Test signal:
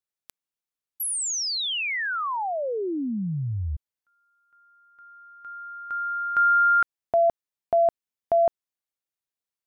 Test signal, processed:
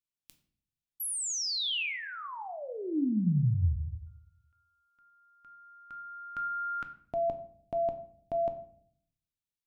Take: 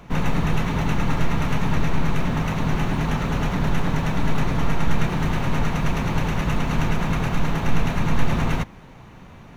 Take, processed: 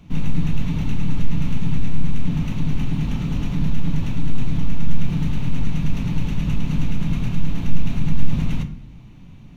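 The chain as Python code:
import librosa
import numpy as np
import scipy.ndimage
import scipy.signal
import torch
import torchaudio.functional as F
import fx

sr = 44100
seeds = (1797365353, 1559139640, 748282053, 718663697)

p1 = fx.band_shelf(x, sr, hz=870.0, db=-12.5, octaves=2.6)
p2 = fx.room_shoebox(p1, sr, seeds[0], volume_m3=92.0, walls='mixed', distance_m=0.34)
p3 = 10.0 ** (-11.5 / 20.0) * np.tanh(p2 / 10.0 ** (-11.5 / 20.0))
p4 = p2 + (p3 * librosa.db_to_amplitude(-5.0))
p5 = fx.high_shelf(p4, sr, hz=2800.0, db=-7.0)
y = p5 * librosa.db_to_amplitude(-4.0)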